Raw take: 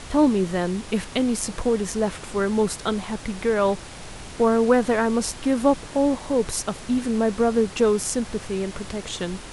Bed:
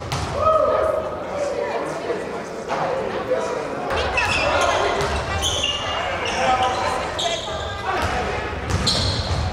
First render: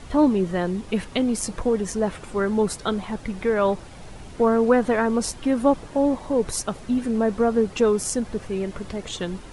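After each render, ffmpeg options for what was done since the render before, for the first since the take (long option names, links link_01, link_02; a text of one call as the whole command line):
ffmpeg -i in.wav -af "afftdn=noise_reduction=9:noise_floor=-39" out.wav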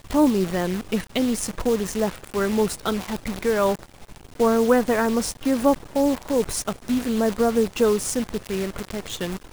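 ffmpeg -i in.wav -af "acrusher=bits=6:dc=4:mix=0:aa=0.000001" out.wav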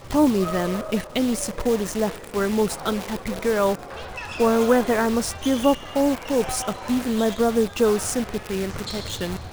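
ffmpeg -i in.wav -i bed.wav -filter_complex "[1:a]volume=-14dB[link_01];[0:a][link_01]amix=inputs=2:normalize=0" out.wav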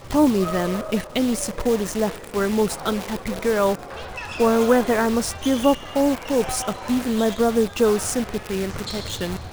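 ffmpeg -i in.wav -af "volume=1dB" out.wav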